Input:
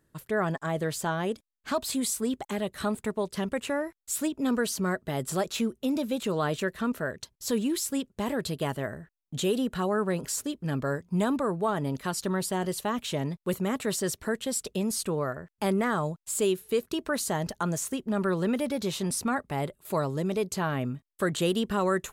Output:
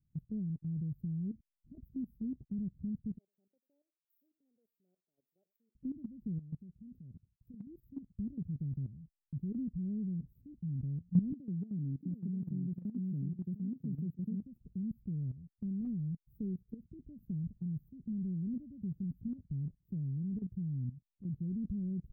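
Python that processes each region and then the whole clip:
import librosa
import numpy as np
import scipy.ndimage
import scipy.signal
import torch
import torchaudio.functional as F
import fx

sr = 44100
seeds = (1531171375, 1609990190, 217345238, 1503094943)

y = fx.chain(x, sr, fx.highpass(hz=780.0, slope=24),
    fx.echo_single(ms=92, db=-18.0), at=(3.18, 5.75))
y = fx.chain(y, sr, fx.highpass(hz=42.0, slope=12),
    fx.level_steps(step_db=12), at=(6.38, 7.67))
y = fx.chain(y, sr, fx.highpass(hz=160.0, slope=24),
    fx.echo_single(ms=705, db=-4.0), at=(11.32, 14.42))
y = fx.chain(y, sr, fx.lowpass(hz=2000.0, slope=24),
    fx.level_steps(step_db=15), at=(20.89, 21.3))
y = scipy.signal.sosfilt(scipy.signal.cheby2(4, 80, [980.0, 9400.0], 'bandstop', fs=sr, output='sos'), y)
y = fx.level_steps(y, sr, step_db=14)
y = F.gain(torch.from_numpy(y), 6.0).numpy()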